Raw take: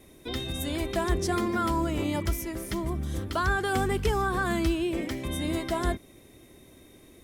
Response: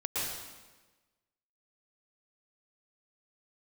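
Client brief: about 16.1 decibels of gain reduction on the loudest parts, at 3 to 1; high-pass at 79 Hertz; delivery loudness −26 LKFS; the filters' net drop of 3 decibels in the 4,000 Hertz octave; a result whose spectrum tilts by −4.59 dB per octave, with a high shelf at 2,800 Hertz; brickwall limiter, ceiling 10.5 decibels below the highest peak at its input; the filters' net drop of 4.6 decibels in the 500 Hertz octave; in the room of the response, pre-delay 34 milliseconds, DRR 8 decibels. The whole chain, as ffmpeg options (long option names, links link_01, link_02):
-filter_complex "[0:a]highpass=79,equalizer=frequency=500:width_type=o:gain=-7.5,highshelf=frequency=2800:gain=3.5,equalizer=frequency=4000:width_type=o:gain=-6.5,acompressor=threshold=-48dB:ratio=3,alimiter=level_in=18dB:limit=-24dB:level=0:latency=1,volume=-18dB,asplit=2[link_01][link_02];[1:a]atrim=start_sample=2205,adelay=34[link_03];[link_02][link_03]afir=irnorm=-1:irlink=0,volume=-14.5dB[link_04];[link_01][link_04]amix=inputs=2:normalize=0,volume=24dB"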